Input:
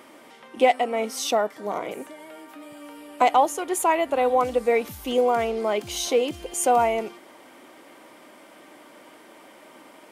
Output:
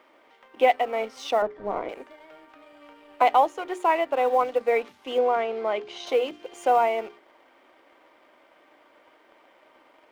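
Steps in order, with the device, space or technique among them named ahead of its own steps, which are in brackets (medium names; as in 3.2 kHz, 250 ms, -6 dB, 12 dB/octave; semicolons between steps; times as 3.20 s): phone line with mismatched companding (band-pass 360–3300 Hz; companding laws mixed up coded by A); 1.42–1.89 s: RIAA curve playback; hum notches 60/120/180/240/300/360/420 Hz; 5.18–6.07 s: distance through air 91 m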